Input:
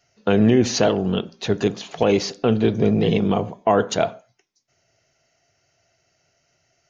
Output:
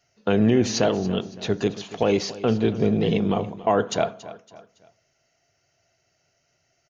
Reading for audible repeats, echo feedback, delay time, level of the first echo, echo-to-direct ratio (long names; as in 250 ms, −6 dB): 3, 41%, 280 ms, −17.0 dB, −16.0 dB